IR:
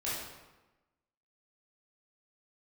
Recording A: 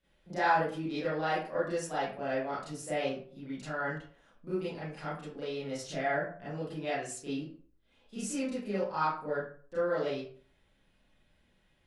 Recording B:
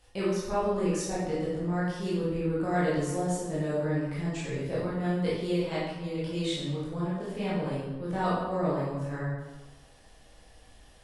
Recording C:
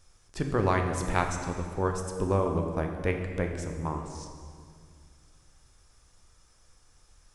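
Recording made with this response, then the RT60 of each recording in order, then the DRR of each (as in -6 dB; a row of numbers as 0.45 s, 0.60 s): B; 0.45 s, 1.1 s, 2.1 s; -11.5 dB, -9.0 dB, 3.5 dB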